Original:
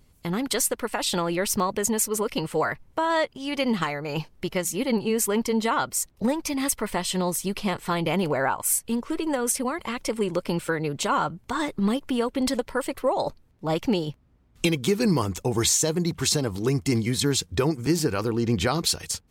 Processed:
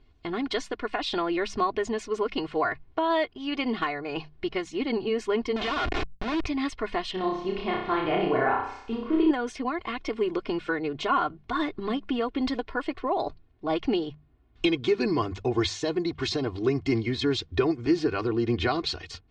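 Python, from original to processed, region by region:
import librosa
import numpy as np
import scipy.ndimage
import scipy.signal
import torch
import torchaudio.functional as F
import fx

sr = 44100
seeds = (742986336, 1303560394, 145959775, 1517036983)

y = fx.chain(x, sr, fx.lowpass_res(hz=2800.0, q=2.7),
    fx.schmitt(flips_db=-38.5),
    fx.pre_swell(db_per_s=110.0), at=(5.56, 6.46))
y = fx.chain(y, sr, fx.lowpass(hz=5700.0, slope=24),
    fx.high_shelf(hz=3800.0, db=-11.5),
    fx.room_flutter(wall_m=5.4, rt60_s=0.68), at=(7.11, 9.31))
y = scipy.signal.sosfilt(scipy.signal.butter(4, 4200.0, 'lowpass', fs=sr, output='sos'), y)
y = fx.hum_notches(y, sr, base_hz=50, count=4)
y = y + 0.71 * np.pad(y, (int(2.8 * sr / 1000.0), 0))[:len(y)]
y = y * 10.0 ** (-3.0 / 20.0)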